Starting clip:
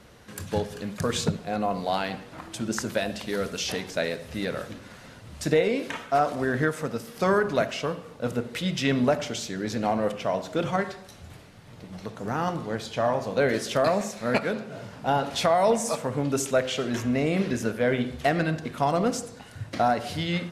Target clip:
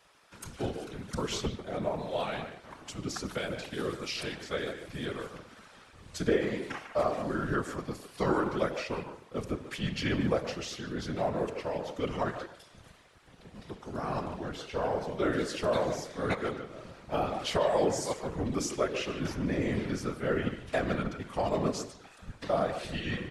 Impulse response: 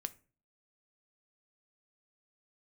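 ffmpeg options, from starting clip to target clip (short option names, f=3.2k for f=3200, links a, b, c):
-filter_complex "[0:a]asplit=2[a][b];[b]adelay=130,highpass=300,lowpass=3.4k,asoftclip=type=hard:threshold=-18dB,volume=-8dB[c];[a][c]amix=inputs=2:normalize=0,asetrate=38808,aresample=44100,acrossover=split=610|1300[d][e][f];[d]aeval=exprs='sgn(val(0))*max(abs(val(0))-0.00282,0)':c=same[g];[g][e][f]amix=inputs=3:normalize=0,afftfilt=real='hypot(re,im)*cos(2*PI*random(0))':imag='hypot(re,im)*sin(2*PI*random(1))':win_size=512:overlap=0.75"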